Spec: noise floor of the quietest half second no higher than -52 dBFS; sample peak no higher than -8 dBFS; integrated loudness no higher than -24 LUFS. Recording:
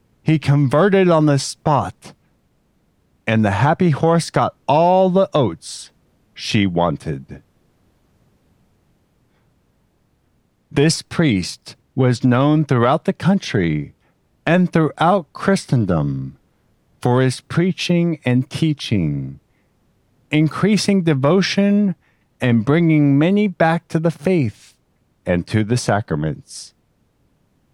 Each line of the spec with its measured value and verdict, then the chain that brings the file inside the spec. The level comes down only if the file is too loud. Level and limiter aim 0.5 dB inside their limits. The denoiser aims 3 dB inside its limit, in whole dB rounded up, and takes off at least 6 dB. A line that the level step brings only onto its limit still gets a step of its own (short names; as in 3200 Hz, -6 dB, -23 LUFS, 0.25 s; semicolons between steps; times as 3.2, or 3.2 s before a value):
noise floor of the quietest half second -62 dBFS: OK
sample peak -2.5 dBFS: fail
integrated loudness -17.5 LUFS: fail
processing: gain -7 dB